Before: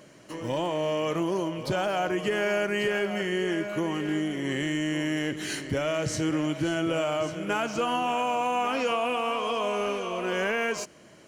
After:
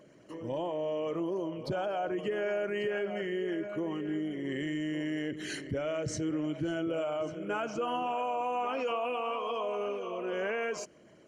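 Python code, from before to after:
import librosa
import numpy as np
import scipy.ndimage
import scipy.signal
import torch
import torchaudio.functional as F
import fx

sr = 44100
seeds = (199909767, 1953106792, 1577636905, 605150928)

y = fx.envelope_sharpen(x, sr, power=1.5)
y = F.gain(torch.from_numpy(y), -5.5).numpy()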